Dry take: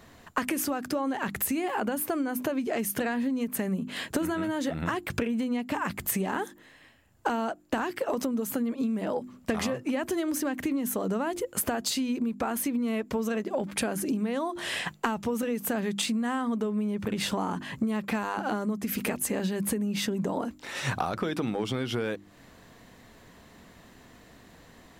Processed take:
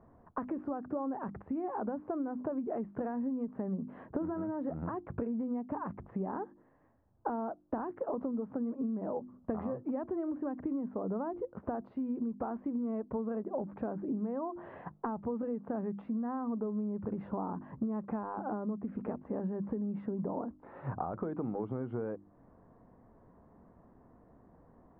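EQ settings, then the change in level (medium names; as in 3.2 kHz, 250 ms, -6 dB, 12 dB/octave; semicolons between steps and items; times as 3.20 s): low-pass 1.1 kHz 24 dB/octave; -6.0 dB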